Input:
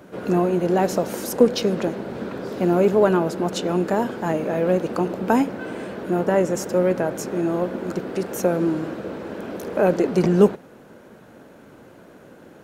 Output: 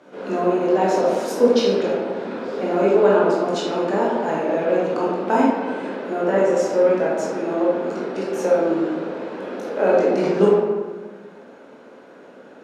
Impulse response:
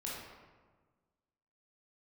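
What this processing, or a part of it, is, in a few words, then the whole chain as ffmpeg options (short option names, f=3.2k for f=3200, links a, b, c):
supermarket ceiling speaker: -filter_complex "[0:a]highpass=290,lowpass=6.3k[a];[1:a]atrim=start_sample=2205[b];[a][b]afir=irnorm=-1:irlink=0,asettb=1/sr,asplit=3[c][d][e];[c]atrim=end=1.284[f];[d]atrim=start=1.28:end=1.75,asetpts=PTS-STARTPTS,afade=t=in:d=0.004:c=qsin,afade=t=out:st=0.466:d=0.004:c=qsin,highshelf=f=11k:g=6[g];[e]atrim=start=1.746[h];[f][g]acrossfade=d=0.004:c1=hsin:c2=qsin[i];[i][h]acrossfade=d=0.004:c1=qsin:c2=hsin,volume=2dB"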